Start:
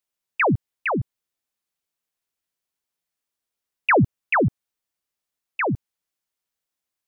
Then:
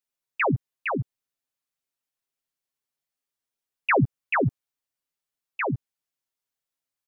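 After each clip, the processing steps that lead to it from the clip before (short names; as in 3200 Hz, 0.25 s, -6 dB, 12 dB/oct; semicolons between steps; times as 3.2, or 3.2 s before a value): comb 7.4 ms; gain -5.5 dB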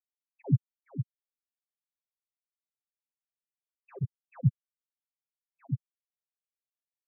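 wavefolder -19 dBFS; crackling interface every 0.21 s, samples 1024, zero, from 0.42; spectral expander 4:1; gain +5.5 dB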